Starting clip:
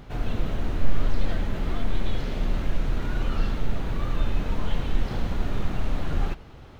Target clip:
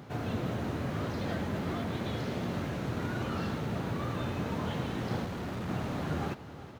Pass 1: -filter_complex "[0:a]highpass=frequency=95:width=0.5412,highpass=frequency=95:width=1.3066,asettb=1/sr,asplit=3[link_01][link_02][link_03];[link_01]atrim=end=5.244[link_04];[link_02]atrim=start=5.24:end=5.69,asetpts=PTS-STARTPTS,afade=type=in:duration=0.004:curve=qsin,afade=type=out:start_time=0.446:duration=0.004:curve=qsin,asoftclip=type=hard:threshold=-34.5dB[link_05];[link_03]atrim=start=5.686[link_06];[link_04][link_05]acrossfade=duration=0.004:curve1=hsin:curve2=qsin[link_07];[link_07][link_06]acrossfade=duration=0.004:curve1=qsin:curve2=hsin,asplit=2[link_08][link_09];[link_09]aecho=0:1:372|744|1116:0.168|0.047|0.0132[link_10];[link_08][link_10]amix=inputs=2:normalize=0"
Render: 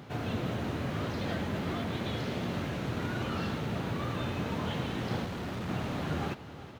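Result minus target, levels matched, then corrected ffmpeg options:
4,000 Hz band +3.0 dB
-filter_complex "[0:a]highpass=frequency=95:width=0.5412,highpass=frequency=95:width=1.3066,equalizer=frequency=3000:width_type=o:width=1.2:gain=-4,asettb=1/sr,asplit=3[link_01][link_02][link_03];[link_01]atrim=end=5.244[link_04];[link_02]atrim=start=5.24:end=5.69,asetpts=PTS-STARTPTS,afade=type=in:duration=0.004:curve=qsin,afade=type=out:start_time=0.446:duration=0.004:curve=qsin,asoftclip=type=hard:threshold=-34.5dB[link_05];[link_03]atrim=start=5.686[link_06];[link_04][link_05]acrossfade=duration=0.004:curve1=hsin:curve2=qsin[link_07];[link_07][link_06]acrossfade=duration=0.004:curve1=qsin:curve2=hsin,asplit=2[link_08][link_09];[link_09]aecho=0:1:372|744|1116:0.168|0.047|0.0132[link_10];[link_08][link_10]amix=inputs=2:normalize=0"

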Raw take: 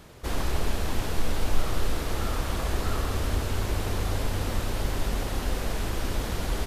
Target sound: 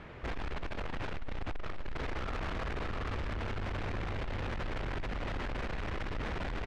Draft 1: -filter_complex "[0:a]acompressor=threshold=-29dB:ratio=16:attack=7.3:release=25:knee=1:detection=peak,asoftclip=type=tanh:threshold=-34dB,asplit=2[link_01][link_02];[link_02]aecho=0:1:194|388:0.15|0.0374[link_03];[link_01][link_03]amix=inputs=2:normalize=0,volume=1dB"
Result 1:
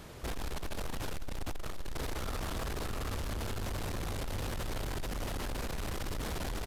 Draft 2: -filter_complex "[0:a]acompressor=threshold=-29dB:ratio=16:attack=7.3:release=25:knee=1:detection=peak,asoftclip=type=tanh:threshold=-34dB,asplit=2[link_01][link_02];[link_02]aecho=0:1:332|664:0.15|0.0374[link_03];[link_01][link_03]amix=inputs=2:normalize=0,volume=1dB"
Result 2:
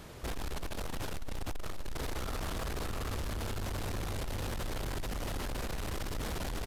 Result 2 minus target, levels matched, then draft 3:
2,000 Hz band −3.0 dB
-filter_complex "[0:a]acompressor=threshold=-29dB:ratio=16:attack=7.3:release=25:knee=1:detection=peak,lowpass=frequency=2200:width_type=q:width=1.6,asoftclip=type=tanh:threshold=-34dB,asplit=2[link_01][link_02];[link_02]aecho=0:1:332|664:0.15|0.0374[link_03];[link_01][link_03]amix=inputs=2:normalize=0,volume=1dB"

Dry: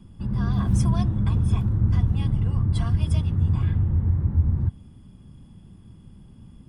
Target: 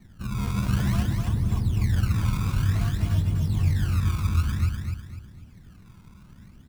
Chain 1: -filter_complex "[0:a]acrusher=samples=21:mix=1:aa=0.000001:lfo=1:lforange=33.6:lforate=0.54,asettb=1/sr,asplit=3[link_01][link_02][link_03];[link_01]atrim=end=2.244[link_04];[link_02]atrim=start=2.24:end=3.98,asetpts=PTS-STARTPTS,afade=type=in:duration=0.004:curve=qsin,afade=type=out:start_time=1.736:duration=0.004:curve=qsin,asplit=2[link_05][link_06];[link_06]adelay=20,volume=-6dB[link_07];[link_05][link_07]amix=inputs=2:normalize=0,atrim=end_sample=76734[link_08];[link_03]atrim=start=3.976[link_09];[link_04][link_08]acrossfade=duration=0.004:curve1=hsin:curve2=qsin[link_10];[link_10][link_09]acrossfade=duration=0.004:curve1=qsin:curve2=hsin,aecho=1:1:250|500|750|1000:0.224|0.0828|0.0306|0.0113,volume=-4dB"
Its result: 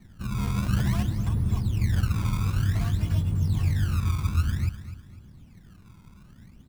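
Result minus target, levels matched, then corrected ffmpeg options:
echo-to-direct −8.5 dB
-filter_complex "[0:a]acrusher=samples=21:mix=1:aa=0.000001:lfo=1:lforange=33.6:lforate=0.54,asettb=1/sr,asplit=3[link_01][link_02][link_03];[link_01]atrim=end=2.244[link_04];[link_02]atrim=start=2.24:end=3.98,asetpts=PTS-STARTPTS,afade=type=in:duration=0.004:curve=qsin,afade=type=out:start_time=1.736:duration=0.004:curve=qsin,asplit=2[link_05][link_06];[link_06]adelay=20,volume=-6dB[link_07];[link_05][link_07]amix=inputs=2:normalize=0,atrim=end_sample=76734[link_08];[link_03]atrim=start=3.976[link_09];[link_04][link_08]acrossfade=duration=0.004:curve1=hsin:curve2=qsin[link_10];[link_10][link_09]acrossfade=duration=0.004:curve1=qsin:curve2=hsin,aecho=1:1:250|500|750|1000|1250:0.596|0.22|0.0815|0.0302|0.0112,volume=-4dB"

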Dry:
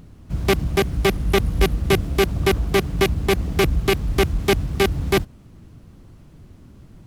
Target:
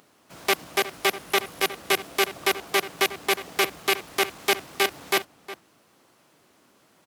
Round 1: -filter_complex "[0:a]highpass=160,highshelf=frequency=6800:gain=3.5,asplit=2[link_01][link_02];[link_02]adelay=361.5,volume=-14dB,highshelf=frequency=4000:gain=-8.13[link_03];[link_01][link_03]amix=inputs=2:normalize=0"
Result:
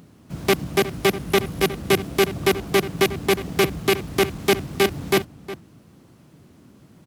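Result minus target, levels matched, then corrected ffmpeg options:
125 Hz band +17.0 dB
-filter_complex "[0:a]highpass=600,highshelf=frequency=6800:gain=3.5,asplit=2[link_01][link_02];[link_02]adelay=361.5,volume=-14dB,highshelf=frequency=4000:gain=-8.13[link_03];[link_01][link_03]amix=inputs=2:normalize=0"

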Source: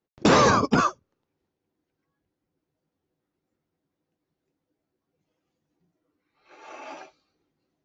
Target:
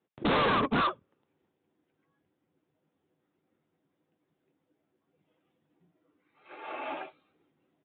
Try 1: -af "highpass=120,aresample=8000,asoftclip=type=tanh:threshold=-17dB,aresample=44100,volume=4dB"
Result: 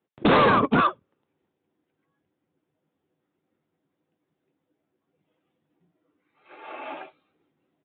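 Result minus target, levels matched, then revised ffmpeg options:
soft clipping: distortion −7 dB
-af "highpass=120,aresample=8000,asoftclip=type=tanh:threshold=-28dB,aresample=44100,volume=4dB"

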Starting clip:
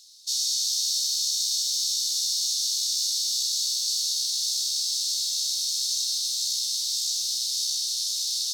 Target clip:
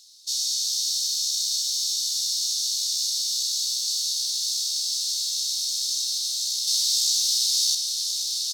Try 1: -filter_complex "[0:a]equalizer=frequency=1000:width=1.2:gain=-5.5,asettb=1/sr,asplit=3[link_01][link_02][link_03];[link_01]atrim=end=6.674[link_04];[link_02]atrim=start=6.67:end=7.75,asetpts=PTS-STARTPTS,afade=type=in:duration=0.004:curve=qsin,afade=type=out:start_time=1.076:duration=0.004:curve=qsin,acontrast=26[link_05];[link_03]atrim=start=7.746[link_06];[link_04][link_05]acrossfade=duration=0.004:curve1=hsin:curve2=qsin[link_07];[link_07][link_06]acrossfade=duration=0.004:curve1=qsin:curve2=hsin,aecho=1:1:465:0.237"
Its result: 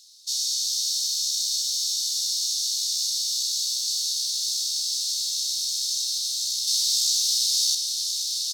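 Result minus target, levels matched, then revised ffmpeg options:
1,000 Hz band −6.0 dB
-filter_complex "[0:a]equalizer=frequency=1000:width=1.2:gain=2.5,asettb=1/sr,asplit=3[link_01][link_02][link_03];[link_01]atrim=end=6.674[link_04];[link_02]atrim=start=6.67:end=7.75,asetpts=PTS-STARTPTS,afade=type=in:duration=0.004:curve=qsin,afade=type=out:start_time=1.076:duration=0.004:curve=qsin,acontrast=26[link_05];[link_03]atrim=start=7.746[link_06];[link_04][link_05]acrossfade=duration=0.004:curve1=hsin:curve2=qsin[link_07];[link_07][link_06]acrossfade=duration=0.004:curve1=qsin:curve2=hsin,aecho=1:1:465:0.237"

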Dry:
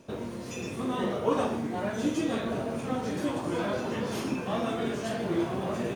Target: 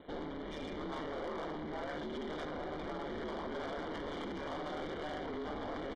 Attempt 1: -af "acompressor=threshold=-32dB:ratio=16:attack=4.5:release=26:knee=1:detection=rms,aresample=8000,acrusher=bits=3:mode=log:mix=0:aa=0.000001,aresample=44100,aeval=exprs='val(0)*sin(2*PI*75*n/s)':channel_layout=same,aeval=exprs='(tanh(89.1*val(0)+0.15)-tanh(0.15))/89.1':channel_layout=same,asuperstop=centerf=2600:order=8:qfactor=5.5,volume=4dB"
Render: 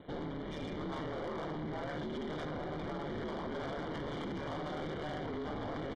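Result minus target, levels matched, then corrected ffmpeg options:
125 Hz band +6.5 dB
-af "acompressor=threshold=-32dB:ratio=16:attack=4.5:release=26:knee=1:detection=rms,aresample=8000,acrusher=bits=3:mode=log:mix=0:aa=0.000001,aresample=44100,aeval=exprs='val(0)*sin(2*PI*75*n/s)':channel_layout=same,aeval=exprs='(tanh(89.1*val(0)+0.15)-tanh(0.15))/89.1':channel_layout=same,asuperstop=centerf=2600:order=8:qfactor=5.5,equalizer=frequency=130:width_type=o:width=0.81:gain=-12.5,volume=4dB"

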